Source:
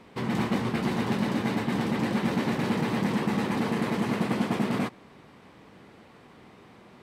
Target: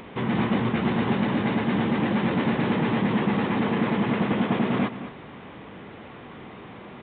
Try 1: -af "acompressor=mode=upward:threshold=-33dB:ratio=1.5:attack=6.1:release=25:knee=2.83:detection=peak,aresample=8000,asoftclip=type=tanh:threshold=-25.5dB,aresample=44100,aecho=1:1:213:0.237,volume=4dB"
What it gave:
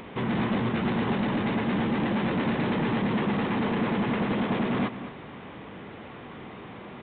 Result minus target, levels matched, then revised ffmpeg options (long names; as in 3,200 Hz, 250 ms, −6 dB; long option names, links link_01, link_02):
soft clipping: distortion +12 dB
-af "acompressor=mode=upward:threshold=-33dB:ratio=1.5:attack=6.1:release=25:knee=2.83:detection=peak,aresample=8000,asoftclip=type=tanh:threshold=-16.5dB,aresample=44100,aecho=1:1:213:0.237,volume=4dB"